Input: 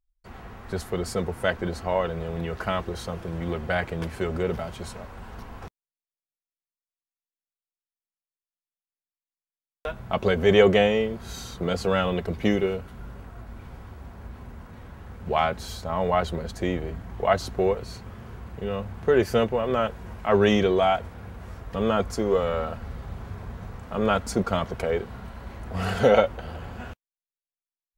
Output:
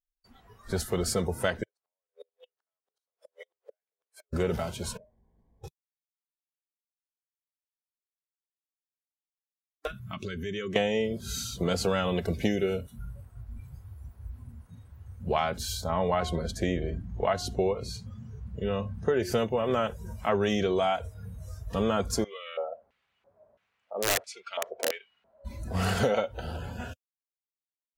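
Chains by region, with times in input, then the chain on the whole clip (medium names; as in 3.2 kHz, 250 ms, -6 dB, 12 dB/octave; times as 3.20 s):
1.63–4.33 s: Chebyshev high-pass 420 Hz, order 5 + compression 5:1, threshold -37 dBFS + inverted gate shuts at -32 dBFS, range -40 dB
4.97–5.64 s: companding laws mixed up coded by mu + boxcar filter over 33 samples + feedback comb 56 Hz, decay 1.4 s, mix 80%
9.87–10.76 s: high-order bell 660 Hz -11.5 dB 1.2 oct + compression 4:1, threshold -34 dBFS
15.86–19.32 s: treble shelf 9.9 kHz -8 dB + de-hum 358.9 Hz, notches 10
22.24–25.45 s: LFO band-pass square 1.5 Hz 610–2600 Hz + integer overflow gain 21 dB
whole clip: compression 10:1, threshold -22 dBFS; spectral noise reduction 19 dB; tone controls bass +1 dB, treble +7 dB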